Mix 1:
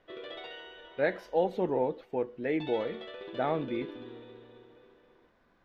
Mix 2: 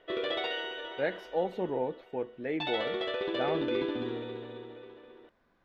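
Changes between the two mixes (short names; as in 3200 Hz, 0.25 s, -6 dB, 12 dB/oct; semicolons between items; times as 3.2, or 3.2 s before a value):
speech -3.0 dB; background +10.5 dB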